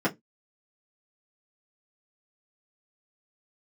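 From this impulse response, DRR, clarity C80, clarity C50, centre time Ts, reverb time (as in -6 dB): -7.0 dB, 33.5 dB, 22.0 dB, 10 ms, 0.15 s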